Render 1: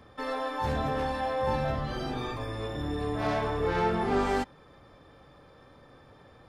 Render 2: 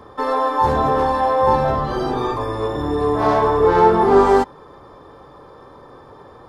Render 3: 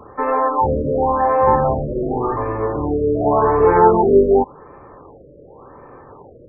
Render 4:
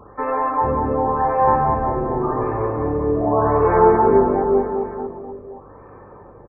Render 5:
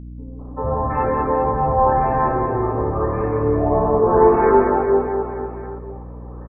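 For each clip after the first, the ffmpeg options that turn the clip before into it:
-af "equalizer=f=400:t=o:w=0.67:g=9,equalizer=f=1k:t=o:w=0.67:g=11,equalizer=f=2.5k:t=o:w=0.67:g=-6,volume=7dB"
-af "afftfilt=real='re*lt(b*sr/1024,610*pow(2700/610,0.5+0.5*sin(2*PI*0.89*pts/sr)))':imag='im*lt(b*sr/1024,610*pow(2700/610,0.5+0.5*sin(2*PI*0.89*pts/sr)))':win_size=1024:overlap=0.75,volume=1.5dB"
-filter_complex "[0:a]aeval=exprs='val(0)+0.00398*(sin(2*PI*50*n/s)+sin(2*PI*2*50*n/s)/2+sin(2*PI*3*50*n/s)/3+sin(2*PI*4*50*n/s)/4+sin(2*PI*5*50*n/s)/5)':c=same,asplit=2[a][b];[b]aecho=0:1:190|399|628.9|881.8|1160:0.631|0.398|0.251|0.158|0.1[c];[a][c]amix=inputs=2:normalize=0,volume=-3.5dB"
-filter_complex "[0:a]acrossover=split=240|1000[a][b][c];[b]adelay=390[d];[c]adelay=720[e];[a][d][e]amix=inputs=3:normalize=0,aeval=exprs='val(0)+0.0178*(sin(2*PI*60*n/s)+sin(2*PI*2*60*n/s)/2+sin(2*PI*3*60*n/s)/3+sin(2*PI*4*60*n/s)/4+sin(2*PI*5*60*n/s)/5)':c=same,volume=2dB"

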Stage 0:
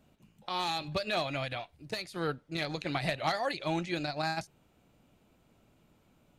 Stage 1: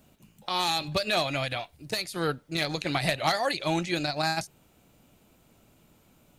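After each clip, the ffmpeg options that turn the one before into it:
-af "highshelf=f=6.1k:g=11,volume=4.5dB"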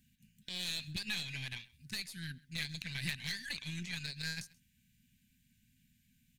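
-af "afftfilt=real='re*(1-between(b*sr/4096,260,1500))':imag='im*(1-between(b*sr/4096,260,1500))':win_size=4096:overlap=0.75,aeval=exprs='0.266*(cos(1*acos(clip(val(0)/0.266,-1,1)))-cos(1*PI/2))+0.0188*(cos(6*acos(clip(val(0)/0.266,-1,1)))-cos(6*PI/2))+0.0299*(cos(8*acos(clip(val(0)/0.266,-1,1)))-cos(8*PI/2))':c=same,aecho=1:1:132:0.0668,volume=-9dB"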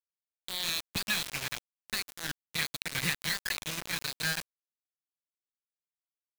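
-af "highpass=61,equalizer=f=1.2k:t=o:w=0.82:g=11,acrusher=bits=5:mix=0:aa=0.000001,volume=5dB"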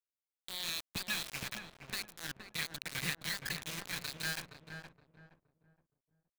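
-filter_complex "[0:a]asplit=2[a][b];[b]adelay=469,lowpass=f=1k:p=1,volume=-4dB,asplit=2[c][d];[d]adelay=469,lowpass=f=1k:p=1,volume=0.35,asplit=2[e][f];[f]adelay=469,lowpass=f=1k:p=1,volume=0.35,asplit=2[g][h];[h]adelay=469,lowpass=f=1k:p=1,volume=0.35[i];[a][c][e][g][i]amix=inputs=5:normalize=0,volume=-6dB"

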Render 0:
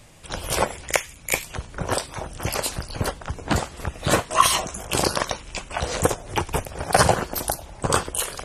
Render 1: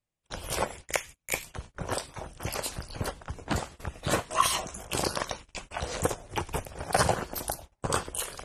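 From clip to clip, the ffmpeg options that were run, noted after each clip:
-af "agate=range=-32dB:threshold=-35dB:ratio=16:detection=peak,volume=-7.5dB"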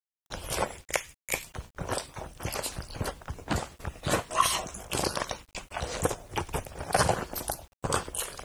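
-af "acrusher=bits=9:mix=0:aa=0.000001"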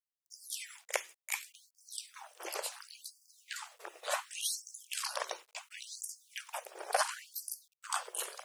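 -af "afftfilt=real='re*gte(b*sr/1024,320*pow(4600/320,0.5+0.5*sin(2*PI*0.7*pts/sr)))':imag='im*gte(b*sr/1024,320*pow(4600/320,0.5+0.5*sin(2*PI*0.7*pts/sr)))':win_size=1024:overlap=0.75,volume=-5dB"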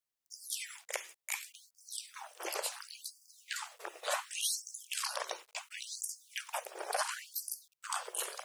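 -af "alimiter=level_in=0.5dB:limit=-24dB:level=0:latency=1:release=109,volume=-0.5dB,volume=3dB"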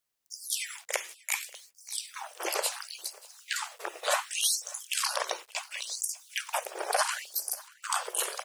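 -af "aecho=1:1:586:0.075,volume=7dB"

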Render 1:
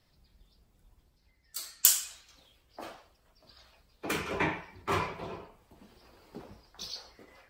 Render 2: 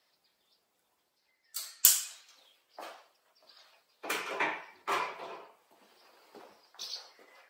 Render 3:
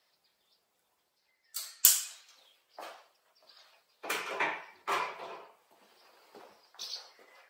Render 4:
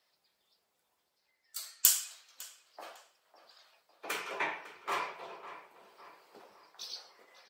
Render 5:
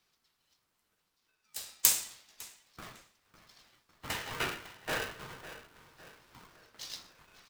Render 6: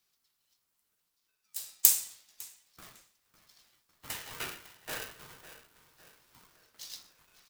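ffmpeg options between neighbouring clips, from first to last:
-af "highpass=520"
-af "equalizer=f=280:t=o:w=0.58:g=-4"
-filter_complex "[0:a]asplit=2[a][b];[b]adelay=553,lowpass=f=2.7k:p=1,volume=-13.5dB,asplit=2[c][d];[d]adelay=553,lowpass=f=2.7k:p=1,volume=0.49,asplit=2[e][f];[f]adelay=553,lowpass=f=2.7k:p=1,volume=0.49,asplit=2[g][h];[h]adelay=553,lowpass=f=2.7k:p=1,volume=0.49,asplit=2[i][j];[j]adelay=553,lowpass=f=2.7k:p=1,volume=0.49[k];[a][c][e][g][i][k]amix=inputs=6:normalize=0,volume=-2.5dB"
-af "aeval=exprs='val(0)*sgn(sin(2*PI*540*n/s))':c=same"
-af "crystalizer=i=2:c=0,volume=-7.5dB"

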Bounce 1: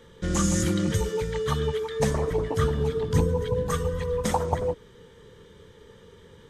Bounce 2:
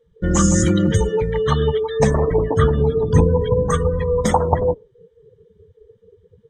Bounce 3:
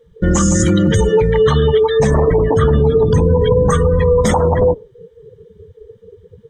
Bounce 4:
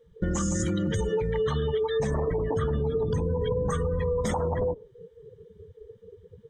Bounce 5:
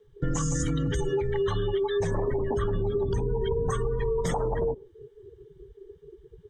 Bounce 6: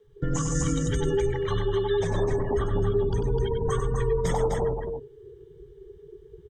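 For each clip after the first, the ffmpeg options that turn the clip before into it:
-af "afftdn=nr=30:nf=-36,volume=8.5dB"
-af "alimiter=level_in=13.5dB:limit=-1dB:release=50:level=0:latency=1,volume=-4dB"
-af "acompressor=threshold=-16dB:ratio=5,volume=-8dB"
-af "afreqshift=-41"
-af "aecho=1:1:95|255:0.447|0.531"

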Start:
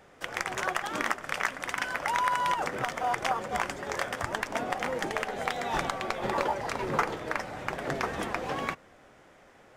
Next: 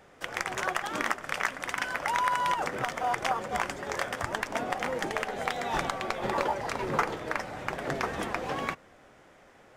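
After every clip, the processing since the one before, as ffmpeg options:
-af anull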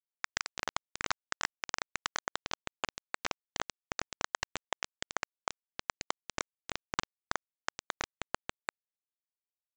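-af "acompressor=threshold=-36dB:ratio=2.5,flanger=delay=6.5:depth=4:regen=72:speed=1.4:shape=triangular,aresample=16000,acrusher=bits=4:mix=0:aa=0.000001,aresample=44100,volume=7dB"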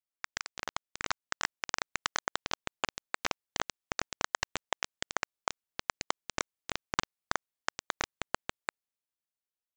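-af "dynaudnorm=f=270:g=9:m=6dB,volume=-3dB"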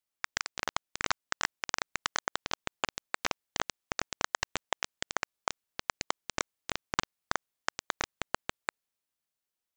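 -af "alimiter=limit=-16dB:level=0:latency=1,volume=4.5dB"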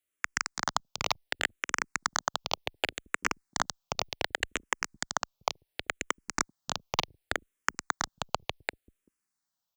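-filter_complex "[0:a]acrossover=split=300[a][b];[a]aecho=1:1:387:0.188[c];[b]acrusher=bits=6:mode=log:mix=0:aa=0.000001[d];[c][d]amix=inputs=2:normalize=0,asplit=2[e][f];[f]afreqshift=-0.68[g];[e][g]amix=inputs=2:normalize=1,volume=5.5dB"

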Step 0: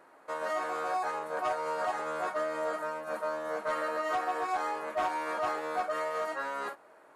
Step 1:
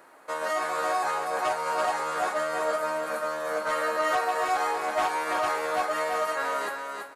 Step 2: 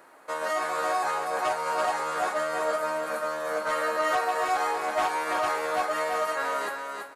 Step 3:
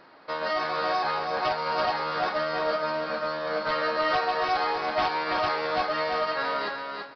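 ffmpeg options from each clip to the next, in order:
-af "highshelf=f=4.6k:g=-9.5,crystalizer=i=4.5:c=0,aecho=1:1:333|666|999:0.562|0.135|0.0324,volume=3dB"
-af anull
-af "bass=f=250:g=10,treble=f=4k:g=13,aresample=11025,acrusher=bits=5:mode=log:mix=0:aa=0.000001,aresample=44100"

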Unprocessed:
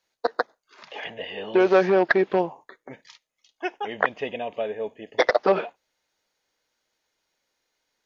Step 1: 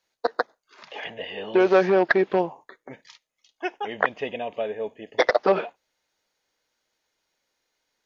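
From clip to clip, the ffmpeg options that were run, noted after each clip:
-af anull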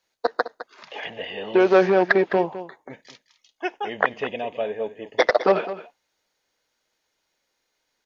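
-af "aecho=1:1:209:0.211,volume=1.5dB"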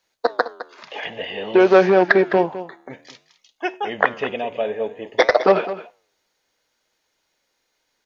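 -af "flanger=delay=6.7:depth=6.6:regen=-90:speed=0.54:shape=sinusoidal,volume=8dB"

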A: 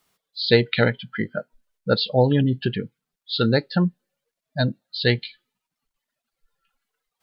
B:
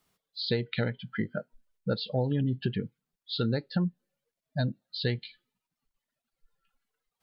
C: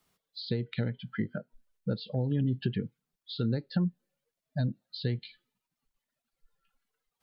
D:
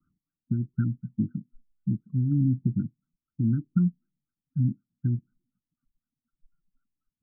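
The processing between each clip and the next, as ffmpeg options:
-af "acompressor=threshold=-25dB:ratio=3,lowshelf=f=350:g=7,volume=-6dB"
-filter_complex "[0:a]acrossover=split=370[a][b];[b]acompressor=threshold=-39dB:ratio=6[c];[a][c]amix=inputs=2:normalize=0"
-af "asuperstop=centerf=650:order=12:qfactor=0.64,afftfilt=real='re*lt(b*sr/1024,750*pow(1600/750,0.5+0.5*sin(2*PI*4*pts/sr)))':imag='im*lt(b*sr/1024,750*pow(1600/750,0.5+0.5*sin(2*PI*4*pts/sr)))':win_size=1024:overlap=0.75,volume=5.5dB"

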